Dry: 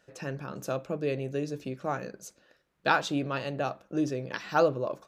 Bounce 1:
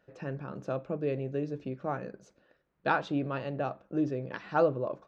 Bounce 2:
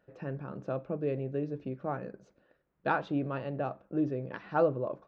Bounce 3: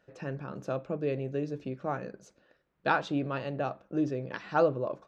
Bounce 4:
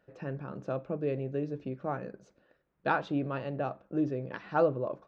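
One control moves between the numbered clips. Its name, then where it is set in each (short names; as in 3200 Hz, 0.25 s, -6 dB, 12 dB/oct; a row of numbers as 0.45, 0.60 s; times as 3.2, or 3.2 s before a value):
tape spacing loss, at 10 kHz: 28, 45, 20, 37 dB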